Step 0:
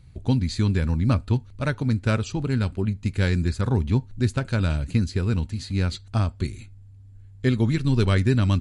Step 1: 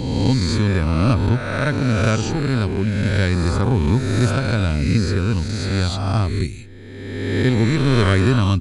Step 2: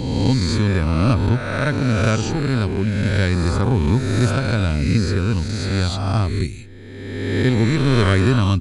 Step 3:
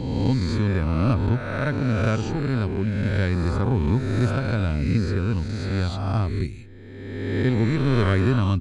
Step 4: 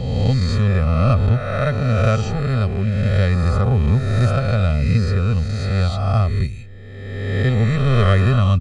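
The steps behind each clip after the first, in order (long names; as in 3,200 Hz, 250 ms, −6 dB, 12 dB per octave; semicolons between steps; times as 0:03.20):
peak hold with a rise ahead of every peak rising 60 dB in 1.60 s; level +2.5 dB
no processing that can be heard
high-shelf EQ 4,100 Hz −11.5 dB; level −4 dB
comb filter 1.6 ms, depth 98%; level +2 dB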